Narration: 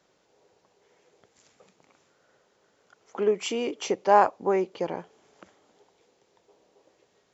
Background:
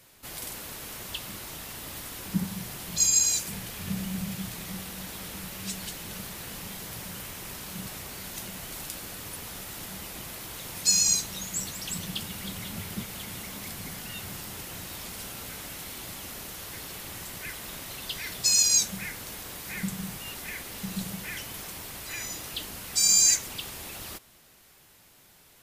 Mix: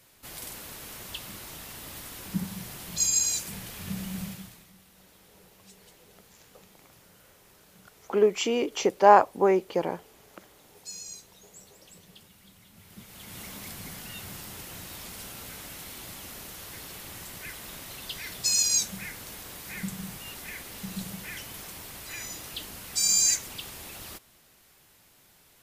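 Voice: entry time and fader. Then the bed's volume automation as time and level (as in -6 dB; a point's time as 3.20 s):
4.95 s, +2.5 dB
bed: 4.25 s -2.5 dB
4.72 s -19 dB
12.72 s -19 dB
13.42 s -2.5 dB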